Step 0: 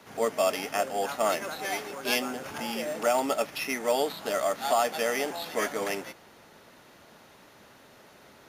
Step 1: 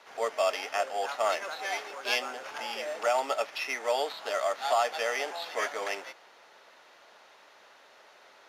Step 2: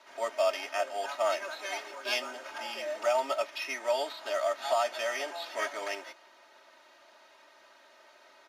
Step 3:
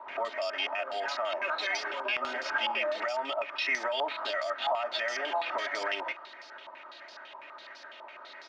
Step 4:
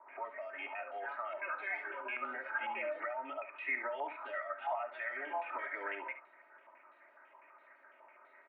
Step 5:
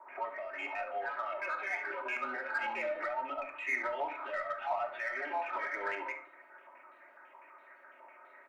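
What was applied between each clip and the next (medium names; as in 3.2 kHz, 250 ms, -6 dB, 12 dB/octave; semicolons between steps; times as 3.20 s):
three-band isolator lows -24 dB, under 450 Hz, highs -14 dB, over 6.7 kHz
comb 3.2 ms, depth 90%; trim -4.5 dB
compression 3:1, threshold -35 dBFS, peak gain reduction 9.5 dB; peak limiter -32 dBFS, peak gain reduction 9.5 dB; step-sequenced low-pass 12 Hz 980–5000 Hz; trim +6 dB
Chebyshev band-pass 240–2300 Hz, order 4; delay 70 ms -9.5 dB; spectral noise reduction 7 dB; trim -5.5 dB
in parallel at -5 dB: saturation -38.5 dBFS, distortion -10 dB; on the sum: simulated room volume 740 m³, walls furnished, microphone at 1 m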